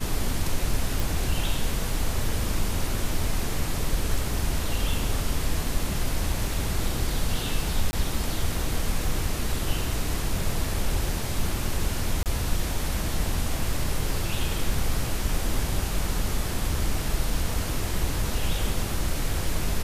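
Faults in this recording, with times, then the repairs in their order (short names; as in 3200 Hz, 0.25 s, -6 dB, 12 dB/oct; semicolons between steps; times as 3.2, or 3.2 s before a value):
1 pop
7.91–7.93 gap 20 ms
12.23–12.26 gap 28 ms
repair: de-click; interpolate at 7.91, 20 ms; interpolate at 12.23, 28 ms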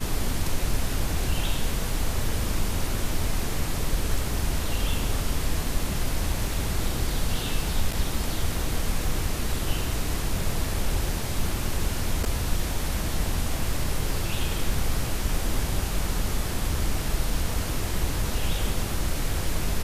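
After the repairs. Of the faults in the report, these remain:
none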